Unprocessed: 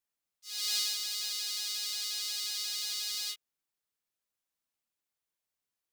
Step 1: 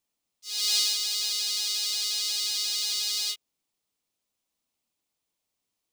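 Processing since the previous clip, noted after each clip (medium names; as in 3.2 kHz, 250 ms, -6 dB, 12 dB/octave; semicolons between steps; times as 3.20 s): fifteen-band graphic EQ 250 Hz +4 dB, 1.6 kHz -8 dB, 16 kHz -7 dB; trim +8 dB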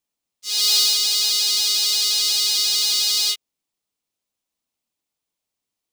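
waveshaping leveller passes 2; trim +3 dB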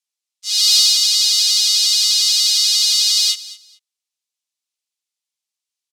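in parallel at -6.5 dB: hysteresis with a dead band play -33 dBFS; on the sum: band-pass filter 5.6 kHz, Q 0.65; feedback delay 218 ms, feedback 20%, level -18 dB; trim +2 dB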